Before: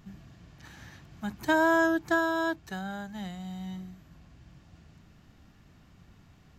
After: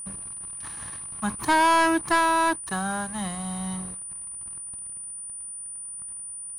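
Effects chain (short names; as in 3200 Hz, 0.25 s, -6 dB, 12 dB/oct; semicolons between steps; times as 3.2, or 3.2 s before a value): bell 1100 Hz +15 dB 0.44 oct; sample leveller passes 3; whine 9400 Hz -29 dBFS; gain -5.5 dB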